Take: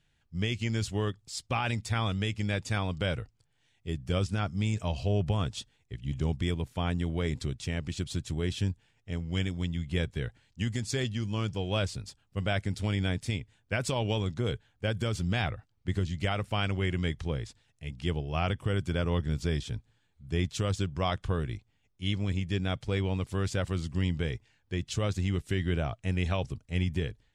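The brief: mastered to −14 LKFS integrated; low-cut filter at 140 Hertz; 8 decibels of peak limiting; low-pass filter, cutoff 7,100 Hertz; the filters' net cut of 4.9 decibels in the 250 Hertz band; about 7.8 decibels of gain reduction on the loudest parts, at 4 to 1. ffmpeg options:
ffmpeg -i in.wav -af "highpass=140,lowpass=7100,equalizer=frequency=250:width_type=o:gain=-6,acompressor=threshold=-36dB:ratio=4,volume=29dB,alimiter=limit=0dB:level=0:latency=1" out.wav

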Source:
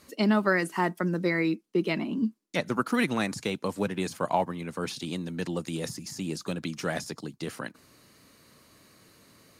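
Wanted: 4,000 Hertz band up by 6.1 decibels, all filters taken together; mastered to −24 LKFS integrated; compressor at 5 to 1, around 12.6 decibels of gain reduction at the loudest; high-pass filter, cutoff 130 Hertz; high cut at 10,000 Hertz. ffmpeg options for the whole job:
ffmpeg -i in.wav -af "highpass=130,lowpass=10000,equalizer=frequency=4000:width_type=o:gain=7.5,acompressor=threshold=-34dB:ratio=5,volume=14dB" out.wav

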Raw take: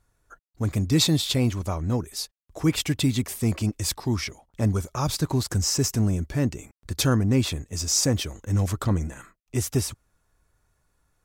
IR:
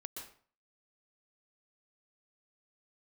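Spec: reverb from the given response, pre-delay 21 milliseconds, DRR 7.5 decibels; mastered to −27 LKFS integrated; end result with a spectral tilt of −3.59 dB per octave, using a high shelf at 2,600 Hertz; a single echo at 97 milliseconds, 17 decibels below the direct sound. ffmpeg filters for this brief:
-filter_complex "[0:a]highshelf=frequency=2600:gain=9,aecho=1:1:97:0.141,asplit=2[link_01][link_02];[1:a]atrim=start_sample=2205,adelay=21[link_03];[link_02][link_03]afir=irnorm=-1:irlink=0,volume=-4.5dB[link_04];[link_01][link_04]amix=inputs=2:normalize=0,volume=-6dB"

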